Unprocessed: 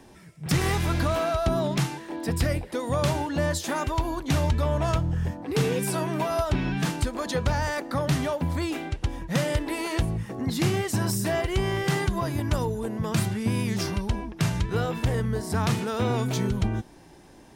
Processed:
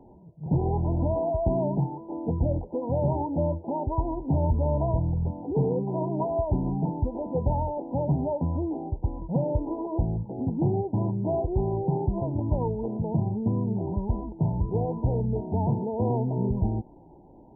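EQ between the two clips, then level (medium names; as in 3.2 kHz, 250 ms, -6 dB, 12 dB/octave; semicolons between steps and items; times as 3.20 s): brick-wall FIR low-pass 1 kHz; 0.0 dB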